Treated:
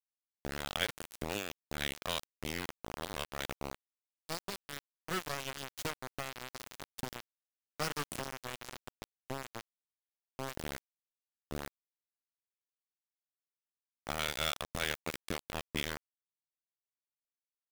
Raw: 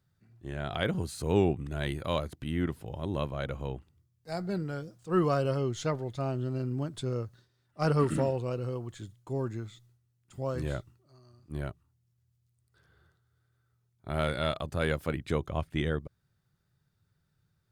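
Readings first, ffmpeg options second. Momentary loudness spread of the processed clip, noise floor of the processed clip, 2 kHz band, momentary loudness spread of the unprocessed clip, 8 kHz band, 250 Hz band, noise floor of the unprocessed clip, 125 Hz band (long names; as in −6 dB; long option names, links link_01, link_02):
13 LU, below −85 dBFS, 0.0 dB, 13 LU, +5.0 dB, −13.0 dB, −75 dBFS, −16.0 dB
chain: -filter_complex "[0:a]acrossover=split=1800[link_01][link_02];[link_01]acompressor=threshold=-37dB:ratio=10[link_03];[link_03][link_02]amix=inputs=2:normalize=0,aeval=exprs='val(0)*gte(abs(val(0)),0.0211)':channel_layout=same,volume=4dB"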